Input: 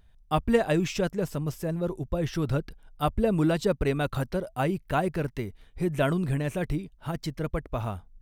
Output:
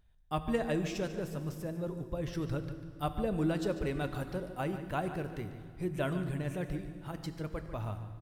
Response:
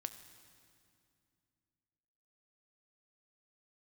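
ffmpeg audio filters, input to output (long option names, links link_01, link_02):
-filter_complex "[0:a]asplit=2[link_01][link_02];[link_02]adelay=145.8,volume=-12dB,highshelf=frequency=4000:gain=-3.28[link_03];[link_01][link_03]amix=inputs=2:normalize=0[link_04];[1:a]atrim=start_sample=2205[link_05];[link_04][link_05]afir=irnorm=-1:irlink=0,volume=-5.5dB"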